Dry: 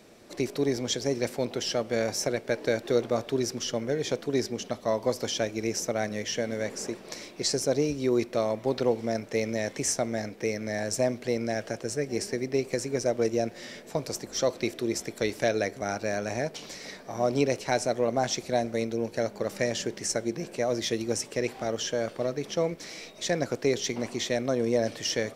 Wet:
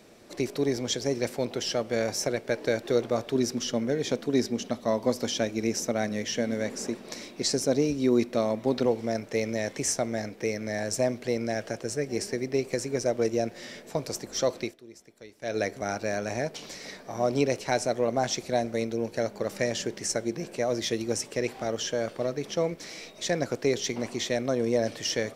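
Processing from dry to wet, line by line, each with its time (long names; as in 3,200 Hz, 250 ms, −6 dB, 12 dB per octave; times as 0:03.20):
0:03.35–0:08.86: hollow resonant body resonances 240/3,800 Hz, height 7 dB
0:14.58–0:15.59: duck −19.5 dB, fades 0.18 s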